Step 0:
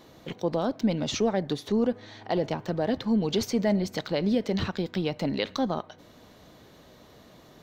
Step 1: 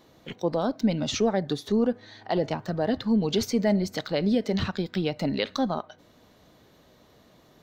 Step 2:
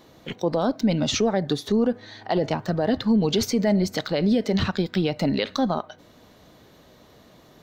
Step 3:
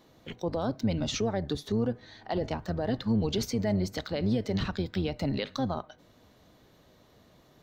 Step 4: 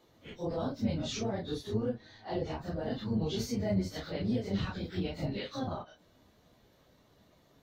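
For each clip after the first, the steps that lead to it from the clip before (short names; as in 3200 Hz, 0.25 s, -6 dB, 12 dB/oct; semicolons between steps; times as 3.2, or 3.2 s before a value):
spectral noise reduction 6 dB; gain +1.5 dB
limiter -18 dBFS, peak gain reduction 4 dB; gain +5 dB
octaver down 1 oct, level -4 dB; gain -8 dB
phase scrambler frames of 0.1 s; gain -4.5 dB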